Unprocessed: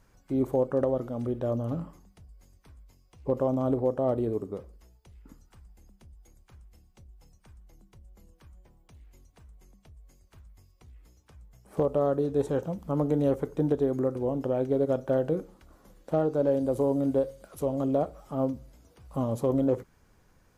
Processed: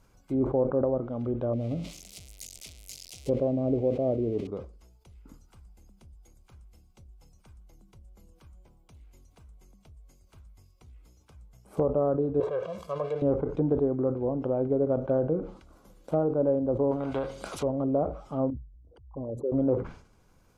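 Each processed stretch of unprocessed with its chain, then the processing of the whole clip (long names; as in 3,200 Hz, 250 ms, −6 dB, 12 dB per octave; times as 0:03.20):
0:01.53–0:04.47: spike at every zero crossing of −26 dBFS + flat-topped bell 1,200 Hz −14 dB 1.2 octaves
0:12.40–0:13.22: mu-law and A-law mismatch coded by mu + high-pass filter 940 Hz 6 dB per octave + comb filter 1.8 ms, depth 89%
0:16.91–0:17.63: low-shelf EQ 180 Hz −8 dB + every bin compressed towards the loudest bin 2 to 1
0:18.50–0:19.52: spectral envelope exaggerated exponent 3 + upward compression, threshold −44 dBFS + parametric band 190 Hz −12 dB 1.6 octaves
whole clip: notch filter 1,800 Hz, Q 5.5; treble cut that deepens with the level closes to 1,200 Hz, closed at −24.5 dBFS; level that may fall only so fast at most 110 dB per second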